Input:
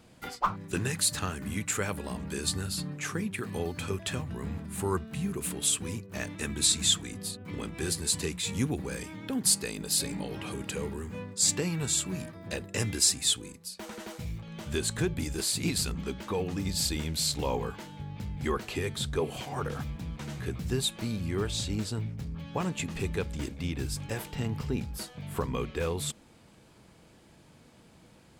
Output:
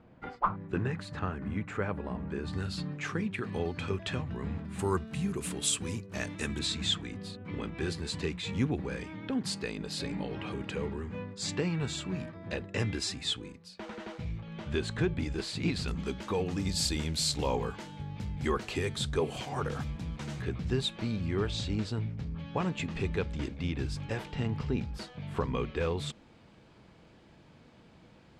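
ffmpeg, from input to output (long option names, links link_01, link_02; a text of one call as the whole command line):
ffmpeg -i in.wav -af "asetnsamples=nb_out_samples=441:pad=0,asendcmd='2.53 lowpass f 3900;4.79 lowpass f 7900;6.59 lowpass f 3300;15.88 lowpass f 8400;20.42 lowpass f 4200',lowpass=1600" out.wav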